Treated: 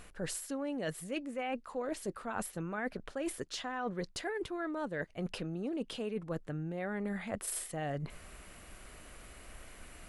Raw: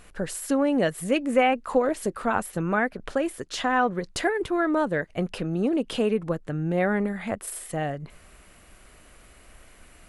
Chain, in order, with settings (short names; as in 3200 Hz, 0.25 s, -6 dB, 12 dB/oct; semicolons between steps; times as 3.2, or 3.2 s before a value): dynamic EQ 4700 Hz, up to +4 dB, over -46 dBFS, Q 0.99; reverse; compressor 12:1, threshold -34 dBFS, peak gain reduction 19.5 dB; reverse